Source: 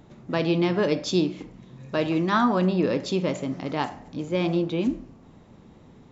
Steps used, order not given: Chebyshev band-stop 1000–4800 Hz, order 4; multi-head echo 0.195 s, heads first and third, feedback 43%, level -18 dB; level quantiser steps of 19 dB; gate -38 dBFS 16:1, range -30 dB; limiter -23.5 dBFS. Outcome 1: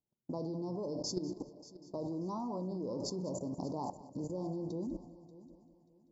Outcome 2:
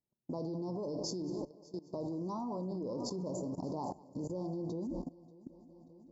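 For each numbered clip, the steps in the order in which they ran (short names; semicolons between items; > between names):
gate > Chebyshev band-stop > level quantiser > limiter > multi-head echo; gate > multi-head echo > limiter > Chebyshev band-stop > level quantiser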